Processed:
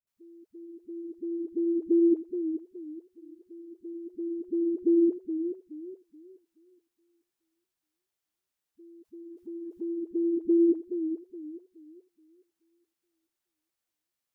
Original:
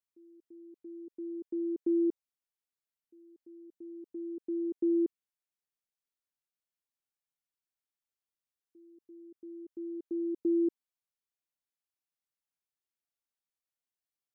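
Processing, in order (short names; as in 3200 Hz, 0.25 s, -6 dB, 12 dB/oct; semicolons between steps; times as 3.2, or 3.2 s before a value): dispersion highs, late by 71 ms, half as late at 300 Hz; 9.03–9.95 transient shaper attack +1 dB, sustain +7 dB; warbling echo 0.424 s, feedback 31%, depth 108 cents, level -9.5 dB; gain +6 dB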